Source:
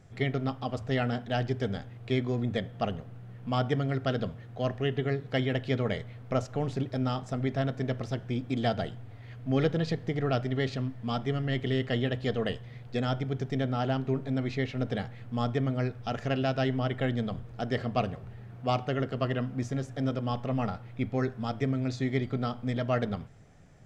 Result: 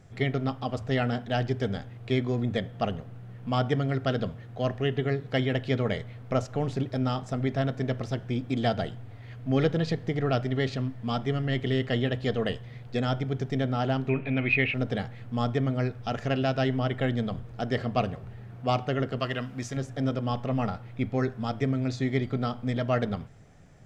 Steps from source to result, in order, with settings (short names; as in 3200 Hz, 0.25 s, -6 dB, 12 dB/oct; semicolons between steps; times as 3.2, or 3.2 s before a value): 14.09–14.74 synth low-pass 2500 Hz, resonance Q 14; 19.2–19.77 tilt shelf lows -5.5 dB, about 1100 Hz; gain +2 dB